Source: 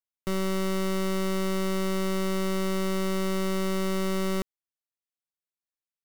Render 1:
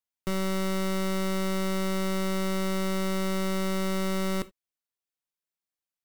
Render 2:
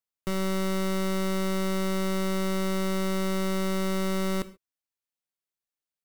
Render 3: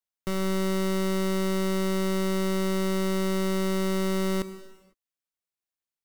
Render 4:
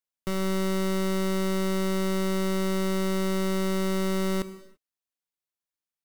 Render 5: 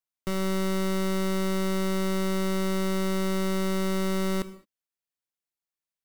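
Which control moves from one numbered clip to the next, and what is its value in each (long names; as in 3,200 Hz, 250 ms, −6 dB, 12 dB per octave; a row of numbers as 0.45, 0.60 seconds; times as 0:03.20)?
reverb whose tail is shaped and stops, gate: 100, 160, 530, 360, 240 milliseconds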